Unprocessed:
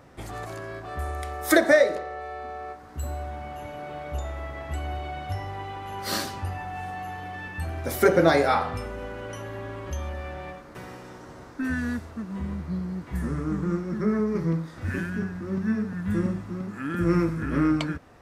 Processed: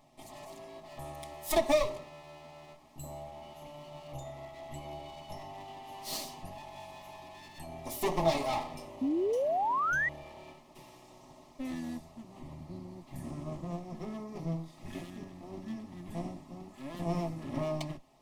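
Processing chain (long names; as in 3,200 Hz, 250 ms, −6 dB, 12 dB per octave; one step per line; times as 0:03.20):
lower of the sound and its delayed copy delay 4.7 ms
phaser with its sweep stopped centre 300 Hz, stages 8
sound drawn into the spectrogram rise, 0:09.01–0:10.09, 250–2,000 Hz −24 dBFS
level −5.5 dB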